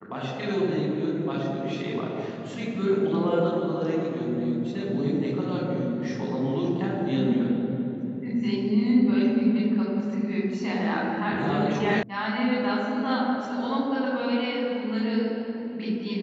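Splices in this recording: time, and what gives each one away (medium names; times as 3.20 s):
12.03 s: sound stops dead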